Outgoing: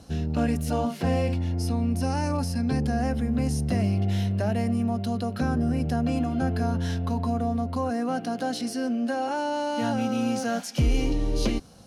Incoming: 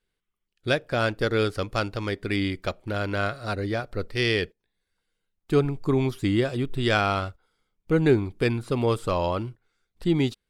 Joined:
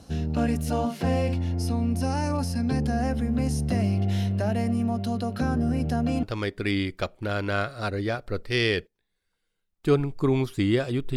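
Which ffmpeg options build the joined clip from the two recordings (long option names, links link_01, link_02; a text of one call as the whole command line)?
ffmpeg -i cue0.wav -i cue1.wav -filter_complex "[0:a]apad=whole_dur=11.16,atrim=end=11.16,atrim=end=6.232[link_01];[1:a]atrim=start=1.878:end=6.81[link_02];[link_01][link_02]acrossfade=duration=0.004:curve1=hsin:curve2=hsin" out.wav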